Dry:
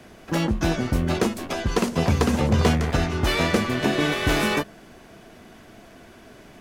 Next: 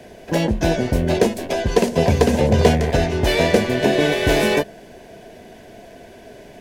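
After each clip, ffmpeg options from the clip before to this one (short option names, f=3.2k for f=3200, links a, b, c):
-af "superequalizer=7b=2:8b=2:10b=0.316,volume=3dB"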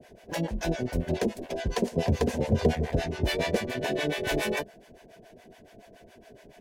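-filter_complex "[0:a]acrossover=split=600[a][b];[a]aeval=exprs='val(0)*(1-1/2+1/2*cos(2*PI*7.1*n/s))':c=same[c];[b]aeval=exprs='val(0)*(1-1/2-1/2*cos(2*PI*7.1*n/s))':c=same[d];[c][d]amix=inputs=2:normalize=0,volume=-6dB"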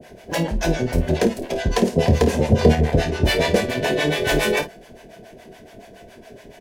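-af "aecho=1:1:26|52:0.316|0.237,volume=8.5dB"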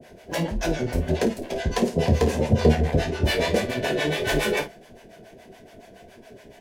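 -af "flanger=delay=7.1:depth=9.4:regen=-44:speed=1.6:shape=triangular"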